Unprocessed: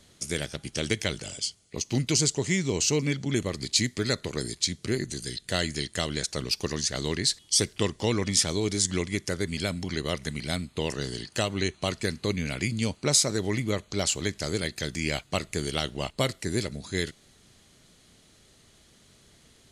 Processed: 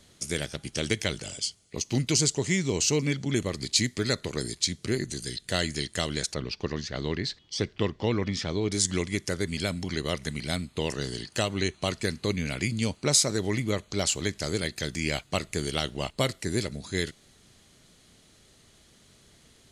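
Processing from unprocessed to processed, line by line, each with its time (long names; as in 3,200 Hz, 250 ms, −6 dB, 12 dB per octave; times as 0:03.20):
0:06.34–0:08.72: high-frequency loss of the air 210 metres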